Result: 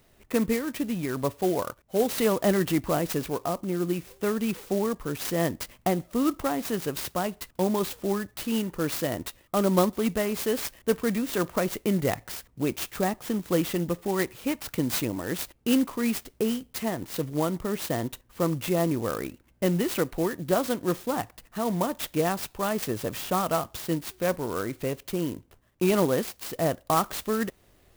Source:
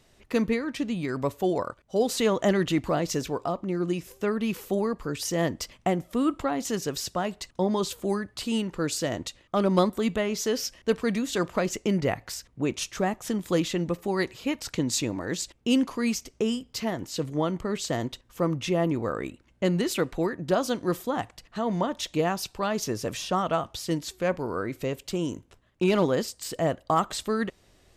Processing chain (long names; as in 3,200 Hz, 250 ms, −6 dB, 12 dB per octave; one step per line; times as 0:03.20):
converter with an unsteady clock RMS 0.05 ms